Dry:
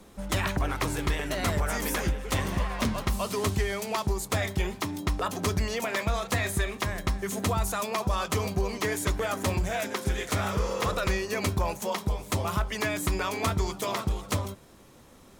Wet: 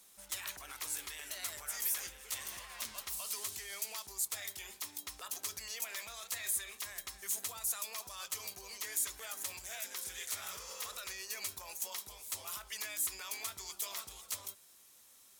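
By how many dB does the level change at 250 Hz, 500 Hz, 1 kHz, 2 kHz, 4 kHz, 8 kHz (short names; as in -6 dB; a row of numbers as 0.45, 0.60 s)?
-32.0, -24.5, -19.0, -13.5, -7.5, -1.0 dB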